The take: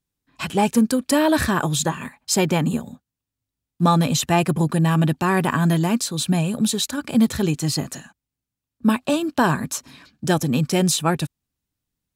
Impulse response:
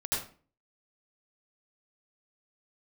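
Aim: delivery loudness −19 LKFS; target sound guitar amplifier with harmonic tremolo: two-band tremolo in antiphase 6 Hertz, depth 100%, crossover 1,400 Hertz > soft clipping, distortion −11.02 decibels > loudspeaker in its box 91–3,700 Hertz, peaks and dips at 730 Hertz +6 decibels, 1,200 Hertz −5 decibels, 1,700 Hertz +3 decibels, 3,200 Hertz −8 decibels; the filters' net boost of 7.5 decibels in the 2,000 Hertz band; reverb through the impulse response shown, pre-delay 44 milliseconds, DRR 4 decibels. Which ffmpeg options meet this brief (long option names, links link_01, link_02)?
-filter_complex "[0:a]equalizer=frequency=2000:width_type=o:gain=8.5,asplit=2[link_01][link_02];[1:a]atrim=start_sample=2205,adelay=44[link_03];[link_02][link_03]afir=irnorm=-1:irlink=0,volume=-10dB[link_04];[link_01][link_04]amix=inputs=2:normalize=0,acrossover=split=1400[link_05][link_06];[link_05]aeval=exprs='val(0)*(1-1/2+1/2*cos(2*PI*6*n/s))':channel_layout=same[link_07];[link_06]aeval=exprs='val(0)*(1-1/2-1/2*cos(2*PI*6*n/s))':channel_layout=same[link_08];[link_07][link_08]amix=inputs=2:normalize=0,asoftclip=threshold=-18dB,highpass=91,equalizer=frequency=730:width_type=q:width=4:gain=6,equalizer=frequency=1200:width_type=q:width=4:gain=-5,equalizer=frequency=1700:width_type=q:width=4:gain=3,equalizer=frequency=3200:width_type=q:width=4:gain=-8,lowpass=frequency=3700:width=0.5412,lowpass=frequency=3700:width=1.3066,volume=7dB"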